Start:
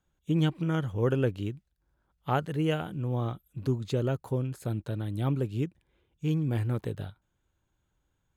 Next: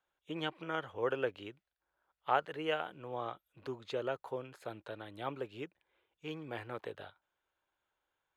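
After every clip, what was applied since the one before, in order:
three-way crossover with the lows and the highs turned down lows −24 dB, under 450 Hz, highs −16 dB, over 4,000 Hz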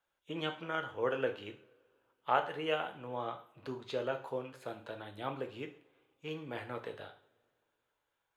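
coupled-rooms reverb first 0.44 s, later 2.3 s, from −26 dB, DRR 4 dB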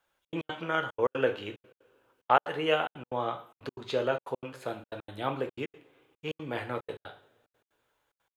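gate pattern "xxx.x.xx" 183 BPM −60 dB
level +7 dB

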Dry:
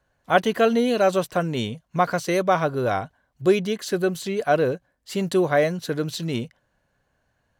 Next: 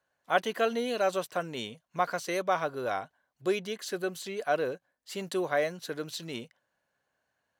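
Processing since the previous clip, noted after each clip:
high-pass filter 500 Hz 6 dB per octave
level −6 dB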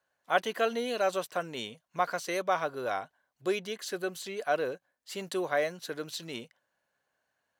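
low-shelf EQ 260 Hz −5 dB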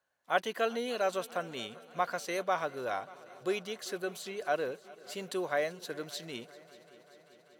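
echo machine with several playback heads 195 ms, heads second and third, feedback 67%, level −22 dB
level −2.5 dB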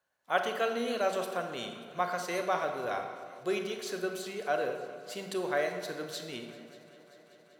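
convolution reverb RT60 1.6 s, pre-delay 26 ms, DRR 5 dB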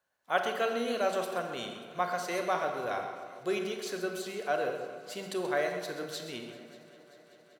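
single-tap delay 131 ms −12 dB

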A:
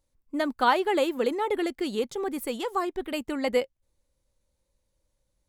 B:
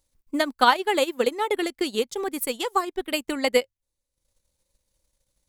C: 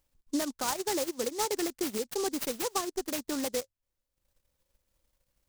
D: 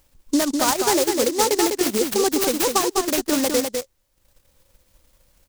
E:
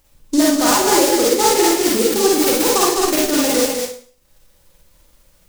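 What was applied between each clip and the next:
high-shelf EQ 2,300 Hz +9 dB; mains-hum notches 50/100 Hz; transient designer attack +5 dB, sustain −11 dB
downward compressor 2 to 1, threshold −23 dBFS, peak gain reduction 6.5 dB; brickwall limiter −19 dBFS, peak gain reduction 10.5 dB; short delay modulated by noise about 5,800 Hz, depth 0.11 ms; level −2 dB
in parallel at +2 dB: downward compressor, threshold −40 dBFS, peak gain reduction 13 dB; on the sum: single-tap delay 202 ms −5 dB; level +8.5 dB
convolution reverb RT60 0.45 s, pre-delay 37 ms, DRR −4 dB

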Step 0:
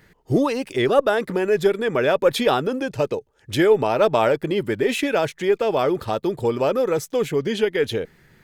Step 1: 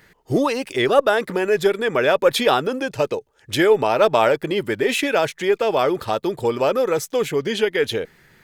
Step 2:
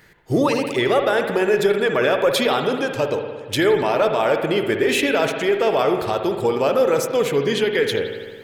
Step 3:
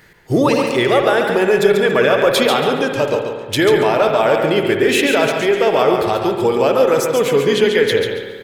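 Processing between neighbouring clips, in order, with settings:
low-shelf EQ 420 Hz −7 dB; level +4 dB
brickwall limiter −10.5 dBFS, peak gain reduction 9 dB; spring reverb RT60 1.6 s, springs 57 ms, chirp 30 ms, DRR 5 dB; level +1 dB
repeating echo 140 ms, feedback 25%, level −6 dB; level +3.5 dB

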